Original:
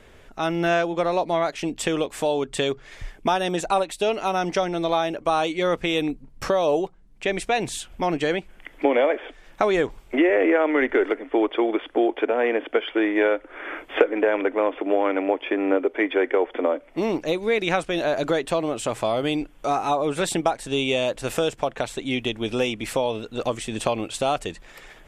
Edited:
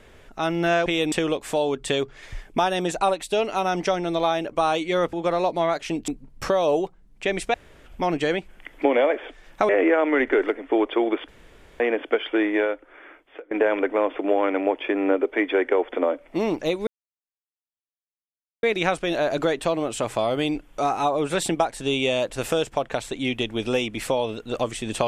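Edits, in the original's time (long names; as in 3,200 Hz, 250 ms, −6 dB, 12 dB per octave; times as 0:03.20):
0:00.86–0:01.81: swap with 0:05.82–0:06.08
0:07.54–0:07.86: fill with room tone
0:09.69–0:10.31: remove
0:11.90–0:12.42: fill with room tone
0:13.09–0:14.13: fade out quadratic, to −23.5 dB
0:17.49: splice in silence 1.76 s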